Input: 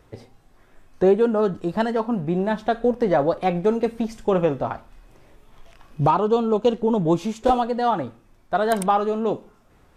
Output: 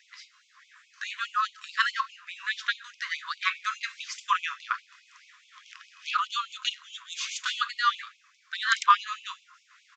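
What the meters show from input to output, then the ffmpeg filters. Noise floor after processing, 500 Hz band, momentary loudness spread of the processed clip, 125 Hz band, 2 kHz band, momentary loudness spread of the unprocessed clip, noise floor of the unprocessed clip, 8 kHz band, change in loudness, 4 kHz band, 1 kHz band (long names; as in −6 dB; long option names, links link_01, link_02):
−64 dBFS, below −40 dB, 15 LU, below −40 dB, +6.5 dB, 7 LU, −56 dBFS, can't be measured, −7.5 dB, +8.5 dB, −5.0 dB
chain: -af "aresample=16000,aresample=44100,afftfilt=real='re*gte(b*sr/1024,960*pow(2200/960,0.5+0.5*sin(2*PI*4.8*pts/sr)))':imag='im*gte(b*sr/1024,960*pow(2200/960,0.5+0.5*sin(2*PI*4.8*pts/sr)))':win_size=1024:overlap=0.75,volume=8.5dB"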